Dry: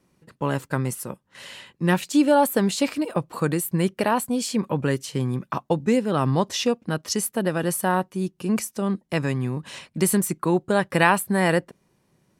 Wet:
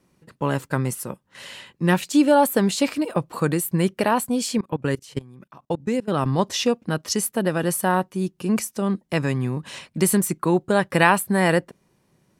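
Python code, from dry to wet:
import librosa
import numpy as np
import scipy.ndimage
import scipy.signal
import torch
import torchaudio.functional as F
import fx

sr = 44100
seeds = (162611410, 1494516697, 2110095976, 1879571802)

y = fx.level_steps(x, sr, step_db=23, at=(4.58, 6.39))
y = y * 10.0 ** (1.5 / 20.0)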